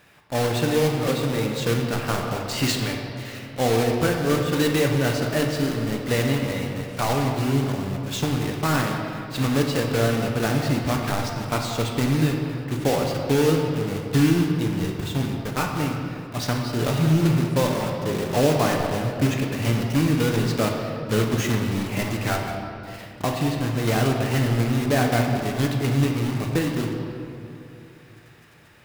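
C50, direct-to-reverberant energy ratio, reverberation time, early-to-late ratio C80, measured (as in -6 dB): 3.0 dB, 1.0 dB, 2.9 s, 4.0 dB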